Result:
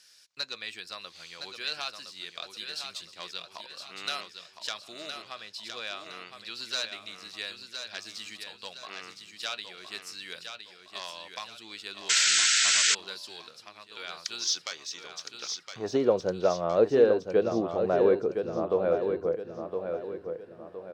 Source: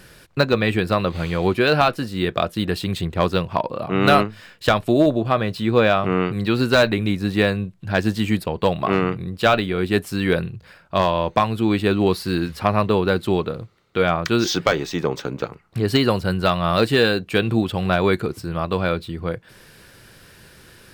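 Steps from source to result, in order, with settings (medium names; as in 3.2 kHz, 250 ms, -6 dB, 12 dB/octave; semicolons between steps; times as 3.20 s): band-pass sweep 5.6 kHz -> 500 Hz, 15.28–15.97 s; feedback delay 1014 ms, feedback 39%, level -7 dB; painted sound noise, 12.09–12.95 s, 1.3–8.2 kHz -23 dBFS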